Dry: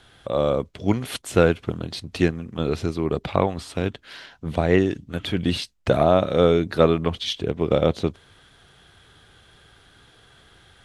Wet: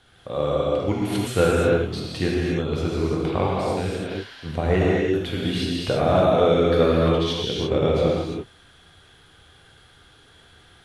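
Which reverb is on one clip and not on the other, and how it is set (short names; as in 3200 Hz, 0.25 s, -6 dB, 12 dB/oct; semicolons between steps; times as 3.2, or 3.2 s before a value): non-linear reverb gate 0.37 s flat, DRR -5 dB; gain -5.5 dB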